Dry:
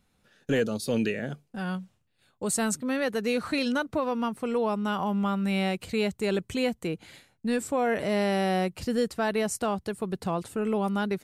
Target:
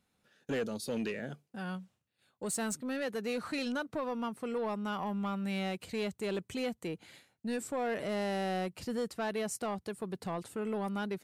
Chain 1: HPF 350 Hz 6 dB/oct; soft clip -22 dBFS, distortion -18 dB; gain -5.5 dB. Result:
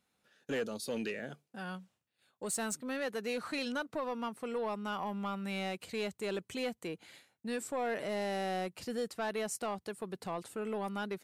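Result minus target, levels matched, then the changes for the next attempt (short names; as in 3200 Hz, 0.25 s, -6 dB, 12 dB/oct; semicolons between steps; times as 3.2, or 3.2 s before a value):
125 Hz band -3.0 dB
change: HPF 130 Hz 6 dB/oct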